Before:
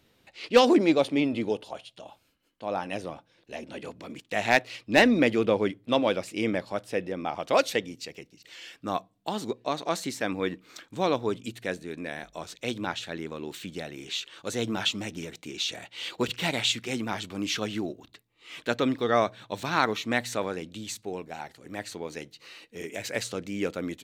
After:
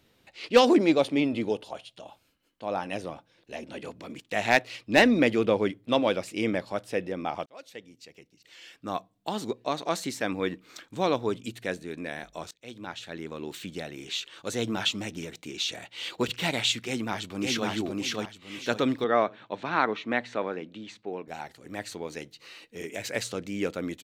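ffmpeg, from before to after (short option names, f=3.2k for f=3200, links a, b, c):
-filter_complex "[0:a]asplit=2[a][b];[b]afade=t=in:st=16.85:d=0.01,afade=t=out:st=17.69:d=0.01,aecho=0:1:560|1120|1680|2240:0.841395|0.252419|0.0757256|0.0227177[c];[a][c]amix=inputs=2:normalize=0,asettb=1/sr,asplit=3[d][e][f];[d]atrim=end=19.044[g];[e]atrim=start=19.04:end=21.28,asetpts=PTS-STARTPTS,afade=t=in:d=0.004:c=qsin,afade=t=out:st=2.236:d=0.004:c=qsin,highpass=190,lowpass=2.6k[h];[f]atrim=start=21.276[i];[g][h]acrossfade=d=0.004:c1=hsin:c2=qsin[j];[j][i]acrossfade=d=0.004:c1=qsin:c2=hsin,asplit=3[k][l][m];[k]atrim=end=7.46,asetpts=PTS-STARTPTS,afade=t=out:st=7.456:d=0.004:c=hsin[n];[l]atrim=start=7.46:end=12.51,asetpts=PTS-STARTPTS,afade=t=in:d=1.92,afade=t=out:st=5.046:d=0.004:c=hsin:silence=0.0707946[o];[m]atrim=start=12.51,asetpts=PTS-STARTPTS,afade=t=in:d=0.92:silence=0.0707946[p];[n][o][p]concat=n=3:v=0:a=1"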